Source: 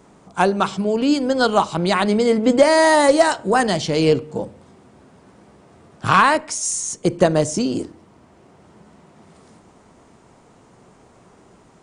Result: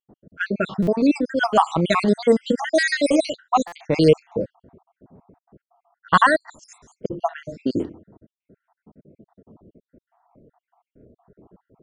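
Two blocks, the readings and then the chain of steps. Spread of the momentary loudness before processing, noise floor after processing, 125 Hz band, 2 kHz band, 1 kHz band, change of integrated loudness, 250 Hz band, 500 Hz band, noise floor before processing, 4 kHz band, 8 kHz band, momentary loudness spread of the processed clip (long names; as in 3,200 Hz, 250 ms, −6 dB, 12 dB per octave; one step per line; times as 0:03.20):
12 LU, below −85 dBFS, −2.5 dB, −2.0 dB, −3.5 dB, −3.0 dB, −2.0 dB, −4.0 dB, −52 dBFS, −5.0 dB, −13.0 dB, 12 LU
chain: time-frequency cells dropped at random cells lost 68%
low-pass that shuts in the quiet parts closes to 550 Hz, open at −15.5 dBFS
buffer that repeats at 0:00.82/0:03.67/0:08.40, samples 256, times 8
level +2 dB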